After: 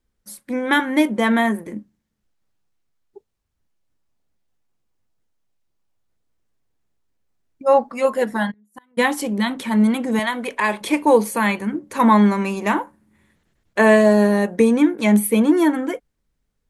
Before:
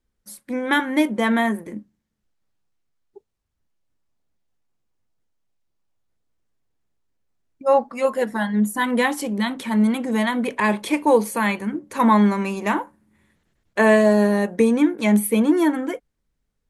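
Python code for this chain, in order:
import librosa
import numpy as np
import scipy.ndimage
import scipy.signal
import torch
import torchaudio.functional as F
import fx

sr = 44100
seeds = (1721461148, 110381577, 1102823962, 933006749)

y = fx.gate_flip(x, sr, shuts_db=-18.0, range_db=-40, at=(8.5, 8.97), fade=0.02)
y = fx.peak_eq(y, sr, hz=160.0, db=-10.5, octaves=2.4, at=(10.19, 10.81))
y = F.gain(torch.from_numpy(y), 2.0).numpy()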